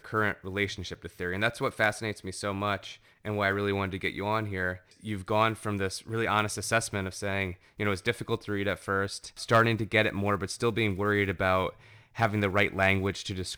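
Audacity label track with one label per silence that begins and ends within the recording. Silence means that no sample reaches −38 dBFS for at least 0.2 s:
2.940000	3.250000	silence
4.760000	5.050000	silence
7.540000	7.790000	silence
11.700000	12.170000	silence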